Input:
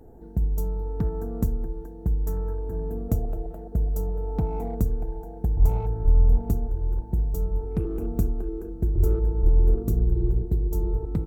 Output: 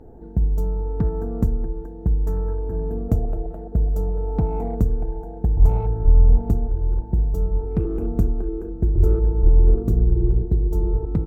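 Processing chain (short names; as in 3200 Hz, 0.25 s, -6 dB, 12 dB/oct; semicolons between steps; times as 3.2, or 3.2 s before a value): LPF 2300 Hz 6 dB/oct; gain +4.5 dB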